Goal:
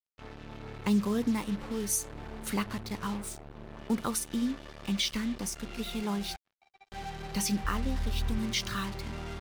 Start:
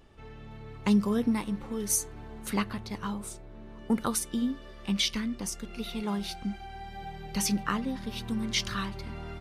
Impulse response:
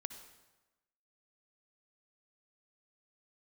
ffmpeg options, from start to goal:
-filter_complex "[0:a]asettb=1/sr,asplit=3[a][b][c];[a]atrim=end=6.364[d];[b]atrim=start=6.36:end=6.92,asetpts=PTS-STARTPTS,afade=t=in:d=0.004:c=qsin,afade=t=out:st=0.556:d=0.004:c=qsin,asplit=3[e][f][g];[e]bandpass=f=730:t=q:w=8,volume=0dB[h];[f]bandpass=f=1.09k:t=q:w=8,volume=-6dB[i];[g]bandpass=f=2.44k:t=q:w=8,volume=-9dB[j];[h][i][j]amix=inputs=3:normalize=0[k];[c]atrim=start=6.916[l];[d][k]acrossfade=d=0.004:c1=hsin:c2=qsin[m];[m][l]acrossfade=d=0.004:c1=qsin:c2=hsin,asplit=2[n][o];[o]alimiter=level_in=1.5dB:limit=-24dB:level=0:latency=1:release=183,volume=-1.5dB,volume=-1dB[p];[n][p]amix=inputs=2:normalize=0,asettb=1/sr,asplit=3[q][r][s];[q]atrim=end=7.644[t];[r]atrim=start=7.64:end=8.38,asetpts=PTS-STARTPTS,afade=t=in:d=0.004:c=qsin,afade=t=out:st=0.736:d=0.004:c=qsin,lowshelf=f=100:t=q:w=3:g=12[u];[s]atrim=start=8.376[v];[t][u]acrossfade=d=0.004:c1=hsin:c2=qsin[w];[w][v]acrossfade=d=0.004:c1=qsin:c2=hsin,acrusher=bits=5:mix=0:aa=0.5,volume=-5dB"

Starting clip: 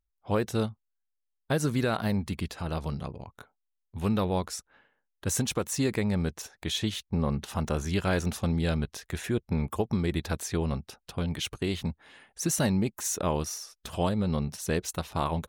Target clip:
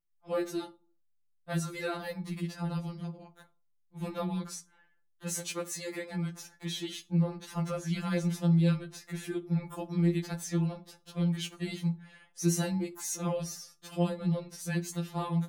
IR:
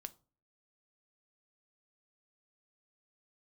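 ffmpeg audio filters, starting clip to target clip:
-filter_complex "[0:a]asettb=1/sr,asplit=3[a][b][c];[a]atrim=end=5.364[d];[b]atrim=start=5.36:end=6.35,asetpts=PTS-STARTPTS,afade=t=in:d=0.004:c=qsin,afade=t=out:st=0.986:d=0.004:c=qsin,lowshelf=f=170:g=-11.5[e];[c]atrim=start=6.346[f];[d][e]acrossfade=d=0.004:c1=hsin:c2=qsin[g];[g][f]acrossfade=d=0.004:c1=qsin:c2=hsin[h];[1:a]atrim=start_sample=2205[i];[h][i]afir=irnorm=-1:irlink=0,afftfilt=real='re*2.83*eq(mod(b,8),0)':imag='im*2.83*eq(mod(b,8),0)':win_size=2048:overlap=0.75,volume=2dB"

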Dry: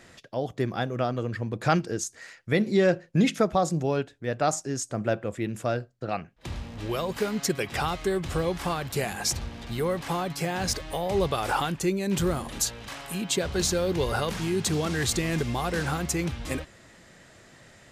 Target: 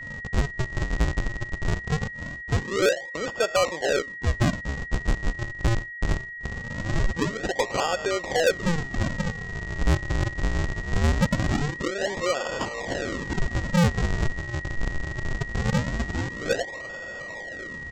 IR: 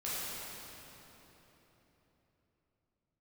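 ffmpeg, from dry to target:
-af "adynamicequalizer=threshold=0.00794:dfrequency=1100:dqfactor=1.1:tfrequency=1100:tqfactor=1.1:attack=5:release=100:ratio=0.375:range=2:mode=cutabove:tftype=bell,acompressor=threshold=-32dB:ratio=5,highpass=f=530:t=q:w=4.9,acontrast=90,aresample=16000,acrusher=samples=39:mix=1:aa=0.000001:lfo=1:lforange=62.4:lforate=0.22,aresample=44100,asoftclip=type=tanh:threshold=-15dB,aeval=exprs='val(0)+0.0178*sin(2*PI*1900*n/s)':c=same"

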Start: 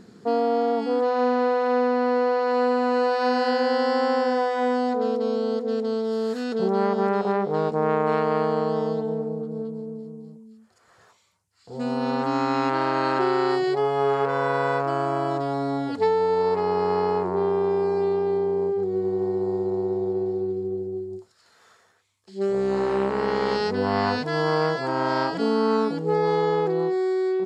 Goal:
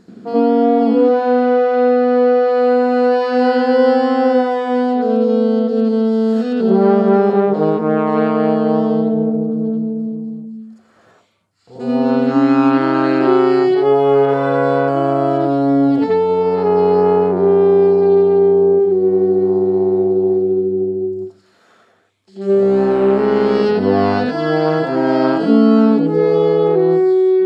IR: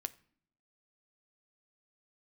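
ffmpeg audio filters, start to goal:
-filter_complex "[0:a]asplit=2[a][b];[b]highpass=180,equalizer=f=220:t=q:w=4:g=7,equalizer=f=310:t=q:w=4:g=7,equalizer=f=620:t=q:w=4:g=5,equalizer=f=970:t=q:w=4:g=-7,equalizer=f=1.9k:t=q:w=4:g=-5,lowpass=f=3.5k:w=0.5412,lowpass=f=3.5k:w=1.3066[c];[1:a]atrim=start_sample=2205,lowshelf=f=160:g=11,adelay=83[d];[c][d]afir=irnorm=-1:irlink=0,volume=8.5dB[e];[a][e]amix=inputs=2:normalize=0,volume=-1.5dB"

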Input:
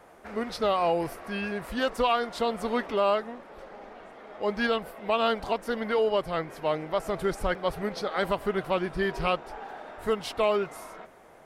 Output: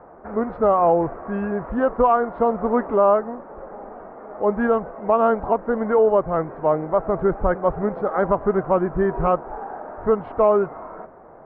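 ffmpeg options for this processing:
-af "lowpass=f=1.3k:w=0.5412,lowpass=f=1.3k:w=1.3066,volume=8.5dB"

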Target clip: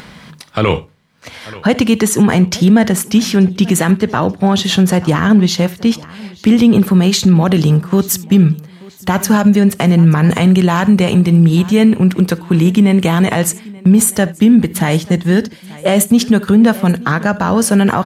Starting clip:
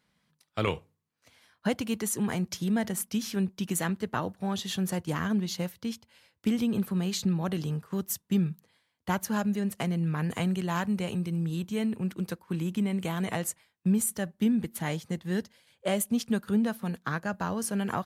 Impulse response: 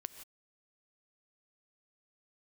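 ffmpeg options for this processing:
-filter_complex "[0:a]asetnsamples=n=441:p=0,asendcmd='6.76 highshelf g -6.5',highshelf=f=7.2k:g=-11.5,acompressor=mode=upward:threshold=-43dB:ratio=2.5,aecho=1:1:883|1766:0.0631|0.0246[a];[1:a]atrim=start_sample=2205,afade=t=out:st=0.13:d=0.01,atrim=end_sample=6174[b];[a][b]afir=irnorm=-1:irlink=0,alimiter=level_in=25.5dB:limit=-1dB:release=50:level=0:latency=1,volume=-1dB"

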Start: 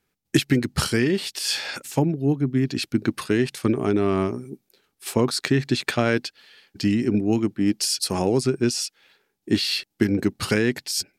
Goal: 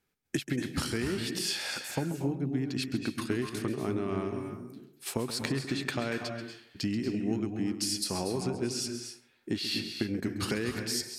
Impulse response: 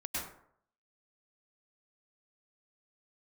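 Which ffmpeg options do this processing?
-filter_complex "[0:a]acompressor=threshold=-24dB:ratio=4,asplit=2[a][b];[1:a]atrim=start_sample=2205,adelay=134[c];[b][c]afir=irnorm=-1:irlink=0,volume=-8dB[d];[a][d]amix=inputs=2:normalize=0,volume=-5dB"

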